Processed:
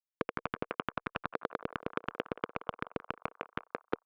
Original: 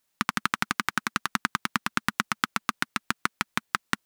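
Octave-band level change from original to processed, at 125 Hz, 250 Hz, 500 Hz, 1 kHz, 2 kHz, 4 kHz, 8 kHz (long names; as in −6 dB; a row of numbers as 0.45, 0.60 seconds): −6.5 dB, −7.0 dB, +8.5 dB, −10.0 dB, −14.0 dB, −17.5 dB, below −35 dB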